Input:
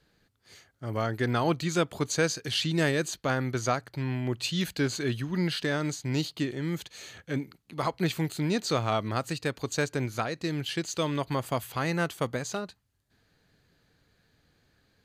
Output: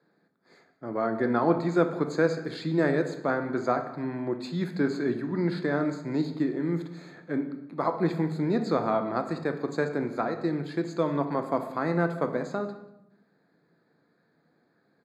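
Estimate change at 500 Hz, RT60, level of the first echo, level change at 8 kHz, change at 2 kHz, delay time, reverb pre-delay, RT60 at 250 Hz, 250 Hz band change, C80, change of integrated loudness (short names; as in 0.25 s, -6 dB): +4.0 dB, 0.85 s, -21.5 dB, under -15 dB, -2.0 dB, 0.188 s, 3 ms, 1.2 s, +3.5 dB, 12.0 dB, +1.5 dB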